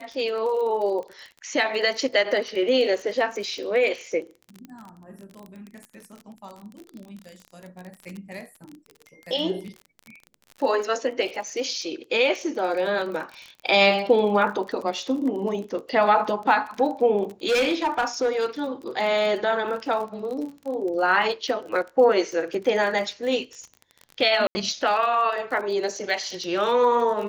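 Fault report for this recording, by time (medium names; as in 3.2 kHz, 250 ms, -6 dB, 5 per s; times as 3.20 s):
crackle 36 per s -32 dBFS
17.48–18.46 s: clipped -17.5 dBFS
24.47–24.55 s: dropout 80 ms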